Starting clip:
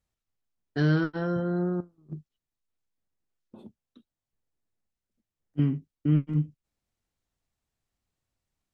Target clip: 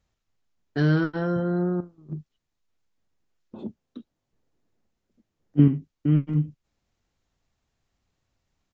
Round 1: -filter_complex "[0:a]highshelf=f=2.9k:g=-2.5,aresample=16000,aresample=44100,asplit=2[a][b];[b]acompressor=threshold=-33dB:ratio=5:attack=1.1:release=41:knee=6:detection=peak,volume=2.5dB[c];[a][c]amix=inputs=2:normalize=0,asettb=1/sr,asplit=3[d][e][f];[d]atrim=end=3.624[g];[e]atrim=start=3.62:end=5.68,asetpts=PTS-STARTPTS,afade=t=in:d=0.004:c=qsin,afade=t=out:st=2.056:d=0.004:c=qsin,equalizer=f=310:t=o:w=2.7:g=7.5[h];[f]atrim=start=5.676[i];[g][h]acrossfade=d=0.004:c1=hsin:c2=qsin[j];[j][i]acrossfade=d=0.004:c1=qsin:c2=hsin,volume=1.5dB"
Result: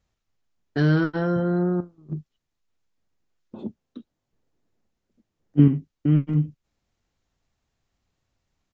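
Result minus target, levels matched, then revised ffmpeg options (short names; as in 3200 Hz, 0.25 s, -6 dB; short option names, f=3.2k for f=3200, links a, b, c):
compressor: peak gain reduction -9 dB
-filter_complex "[0:a]highshelf=f=2.9k:g=-2.5,aresample=16000,aresample=44100,asplit=2[a][b];[b]acompressor=threshold=-44.5dB:ratio=5:attack=1.1:release=41:knee=6:detection=peak,volume=2.5dB[c];[a][c]amix=inputs=2:normalize=0,asettb=1/sr,asplit=3[d][e][f];[d]atrim=end=3.624[g];[e]atrim=start=3.62:end=5.68,asetpts=PTS-STARTPTS,afade=t=in:d=0.004:c=qsin,afade=t=out:st=2.056:d=0.004:c=qsin,equalizer=f=310:t=o:w=2.7:g=7.5[h];[f]atrim=start=5.676[i];[g][h]acrossfade=d=0.004:c1=hsin:c2=qsin[j];[j][i]acrossfade=d=0.004:c1=qsin:c2=hsin,volume=1.5dB"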